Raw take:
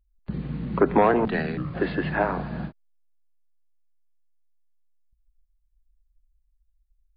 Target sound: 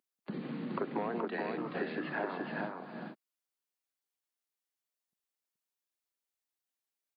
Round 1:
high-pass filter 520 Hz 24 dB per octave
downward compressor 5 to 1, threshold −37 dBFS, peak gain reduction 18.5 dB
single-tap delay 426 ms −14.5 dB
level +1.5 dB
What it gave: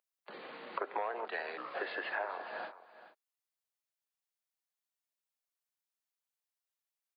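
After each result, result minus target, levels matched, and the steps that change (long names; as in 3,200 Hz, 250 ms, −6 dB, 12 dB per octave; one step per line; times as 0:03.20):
250 Hz band −14.5 dB; echo-to-direct −11 dB
change: high-pass filter 230 Hz 24 dB per octave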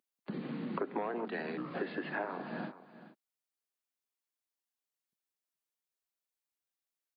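echo-to-direct −11 dB
change: single-tap delay 426 ms −3.5 dB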